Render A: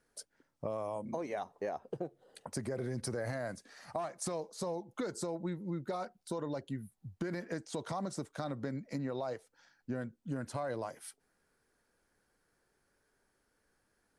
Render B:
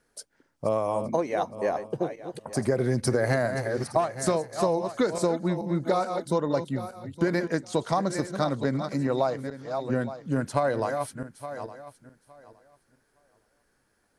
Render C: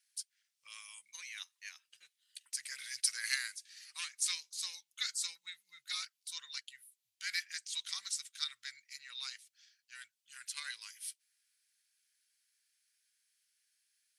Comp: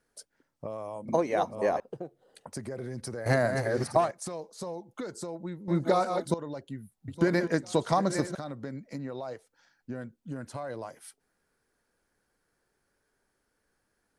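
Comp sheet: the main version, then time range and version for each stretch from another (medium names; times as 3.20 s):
A
1.08–1.80 s: from B
3.26–4.11 s: from B
5.68–6.34 s: from B
7.08–8.35 s: from B
not used: C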